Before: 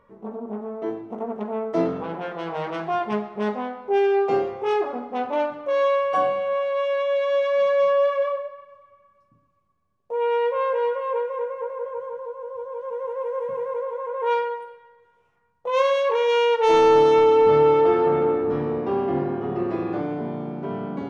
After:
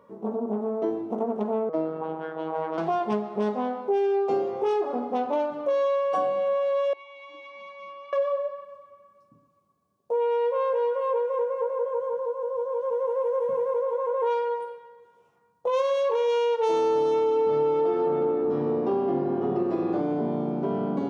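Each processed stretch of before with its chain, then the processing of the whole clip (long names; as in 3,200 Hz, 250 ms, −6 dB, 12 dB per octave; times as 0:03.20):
0:01.69–0:02.78: low-pass filter 1,400 Hz + spectral tilt +3.5 dB per octave + phases set to zero 159 Hz
0:06.93–0:08.13: formant filter u + high-shelf EQ 2,600 Hz +10.5 dB
whole clip: high-pass filter 170 Hz 12 dB per octave; parametric band 2,000 Hz −10 dB 1.5 octaves; downward compressor 4 to 1, threshold −29 dBFS; level +6 dB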